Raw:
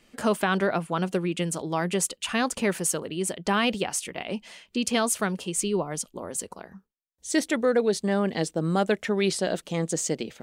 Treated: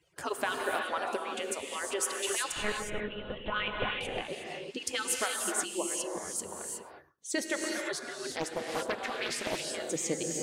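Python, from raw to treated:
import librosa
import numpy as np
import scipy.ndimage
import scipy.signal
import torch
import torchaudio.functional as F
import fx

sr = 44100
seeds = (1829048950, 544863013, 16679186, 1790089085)

y = fx.hpss_only(x, sr, part='percussive')
y = scipy.signal.sosfilt(scipy.signal.butter(2, 65.0, 'highpass', fs=sr, output='sos'), y)
y = fx.lpc_monotone(y, sr, seeds[0], pitch_hz=210.0, order=8, at=(2.52, 4.01))
y = y + 10.0 ** (-23.5 / 20.0) * np.pad(y, (int(105 * sr / 1000.0), 0))[:len(y)]
y = fx.rev_gated(y, sr, seeds[1], gate_ms=390, shape='rising', drr_db=0.0)
y = fx.doppler_dist(y, sr, depth_ms=0.49, at=(8.31, 9.65))
y = F.gain(torch.from_numpy(y), -5.0).numpy()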